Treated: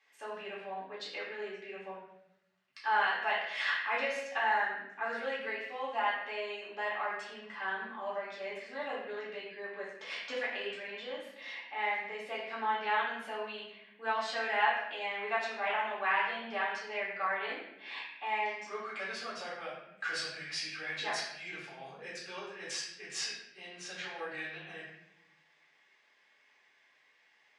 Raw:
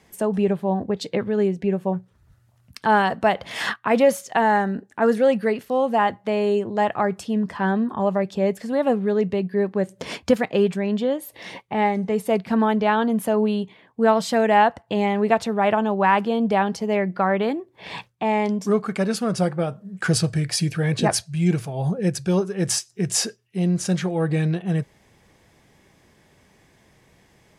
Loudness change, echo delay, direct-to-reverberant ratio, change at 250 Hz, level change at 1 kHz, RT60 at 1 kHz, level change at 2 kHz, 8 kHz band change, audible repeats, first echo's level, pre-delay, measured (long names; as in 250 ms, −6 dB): −13.5 dB, no echo audible, −8.0 dB, −30.0 dB, −11.5 dB, 0.75 s, −4.5 dB, −17.5 dB, no echo audible, no echo audible, 4 ms